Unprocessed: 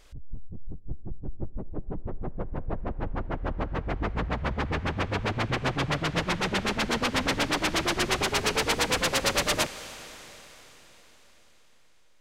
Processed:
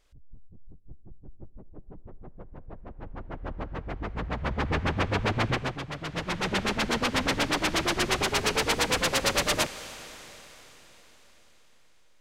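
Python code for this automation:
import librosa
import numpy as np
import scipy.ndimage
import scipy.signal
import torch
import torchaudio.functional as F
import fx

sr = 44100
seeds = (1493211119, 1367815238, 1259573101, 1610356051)

y = fx.gain(x, sr, db=fx.line((2.81, -12.0), (3.5, -5.0), (4.07, -5.0), (4.74, 2.0), (5.5, 2.0), (5.86, -10.0), (6.52, 0.0)))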